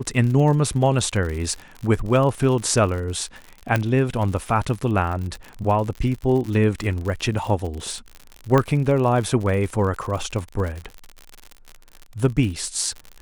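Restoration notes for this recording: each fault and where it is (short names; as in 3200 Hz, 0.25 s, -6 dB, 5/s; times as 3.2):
crackle 67/s -28 dBFS
3.76 pop -8 dBFS
8.58 pop -7 dBFS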